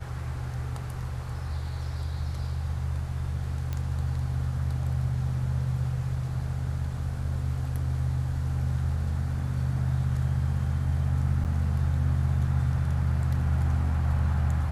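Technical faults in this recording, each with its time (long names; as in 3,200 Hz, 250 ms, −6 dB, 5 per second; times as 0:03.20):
0:03.73: click −19 dBFS
0:11.44–0:11.45: drop-out 8.8 ms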